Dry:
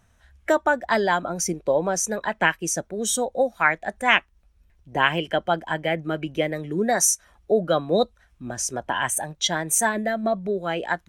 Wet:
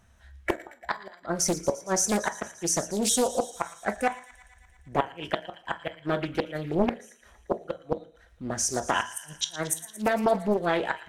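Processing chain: inverted gate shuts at -12 dBFS, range -35 dB; feedback echo behind a high-pass 115 ms, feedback 71%, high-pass 1.9 kHz, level -14 dB; on a send at -8 dB: reverberation RT60 0.45 s, pre-delay 7 ms; on the sum: loudspeaker Doppler distortion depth 0.92 ms

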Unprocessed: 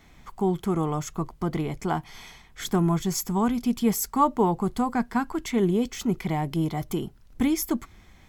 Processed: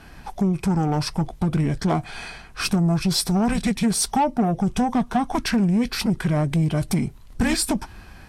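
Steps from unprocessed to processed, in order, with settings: compression 4:1, threshold -25 dBFS, peak gain reduction 9 dB; formant shift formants -5 st; Chebyshev shaper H 5 -21 dB, 8 -29 dB, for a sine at -16.5 dBFS; trim +7 dB; Vorbis 64 kbps 48 kHz

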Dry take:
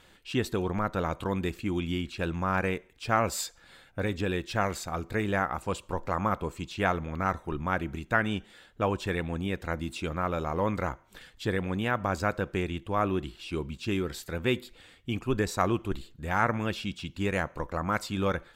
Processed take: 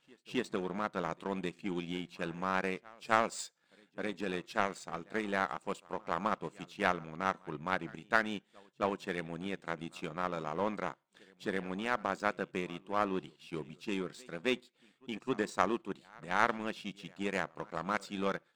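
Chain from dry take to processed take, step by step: reverse echo 265 ms -19 dB; FFT band-pass 130–9500 Hz; power-law waveshaper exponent 1.4

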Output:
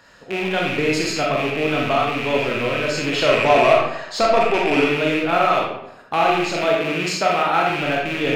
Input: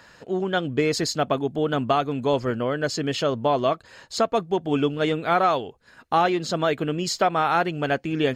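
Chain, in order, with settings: rattle on loud lows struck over -36 dBFS, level -16 dBFS; 3.12–4.84 s: overdrive pedal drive 18 dB, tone 2.1 kHz, clips at -7.5 dBFS; 6.51–7.70 s: high-pass 130 Hz; reverberation RT60 0.80 s, pre-delay 4 ms, DRR -2.5 dB; trim -2 dB

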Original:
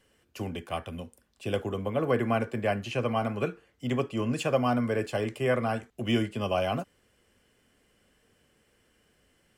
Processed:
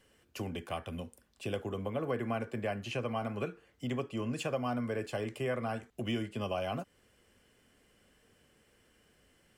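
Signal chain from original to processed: compression 2:1, threshold -37 dBFS, peak gain reduction 10 dB

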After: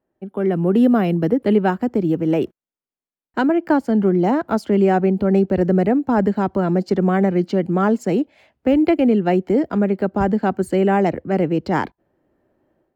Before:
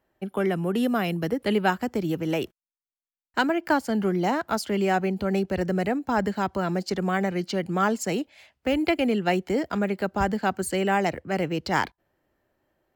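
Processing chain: treble shelf 2.9 kHz -10 dB; level rider gain up to 11.5 dB; peaking EQ 280 Hz +9 dB 2.6 oct; trim -8.5 dB

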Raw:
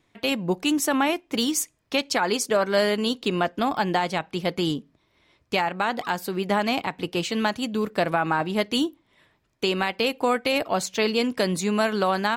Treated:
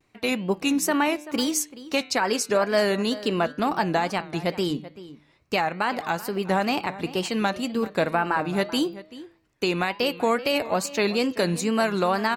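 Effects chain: band-stop 3.3 kHz, Q 6.8; de-hum 159.4 Hz, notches 29; wow and flutter 120 cents; echo from a far wall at 66 m, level -16 dB

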